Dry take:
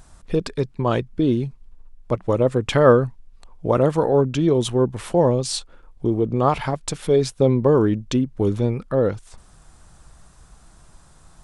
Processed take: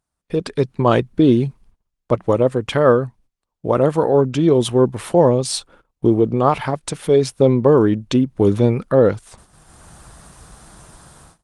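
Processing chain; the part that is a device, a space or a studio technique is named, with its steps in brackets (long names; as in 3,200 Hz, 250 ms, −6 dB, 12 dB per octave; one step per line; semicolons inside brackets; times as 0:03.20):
video call (high-pass filter 110 Hz 6 dB per octave; automatic gain control gain up to 13 dB; noise gate −45 dBFS, range −25 dB; level −1 dB; Opus 32 kbit/s 48,000 Hz)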